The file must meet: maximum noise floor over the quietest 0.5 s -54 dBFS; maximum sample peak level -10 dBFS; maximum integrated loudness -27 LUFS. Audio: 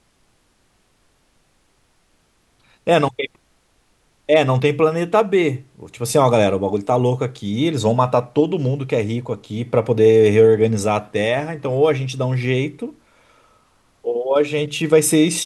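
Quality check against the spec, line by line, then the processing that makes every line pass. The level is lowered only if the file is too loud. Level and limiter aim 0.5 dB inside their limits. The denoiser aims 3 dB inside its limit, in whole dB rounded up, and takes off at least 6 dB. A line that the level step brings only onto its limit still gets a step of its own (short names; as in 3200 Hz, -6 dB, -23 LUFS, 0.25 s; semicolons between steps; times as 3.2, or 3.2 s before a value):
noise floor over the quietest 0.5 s -61 dBFS: OK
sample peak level -2.5 dBFS: fail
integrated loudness -18.0 LUFS: fail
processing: gain -9.5 dB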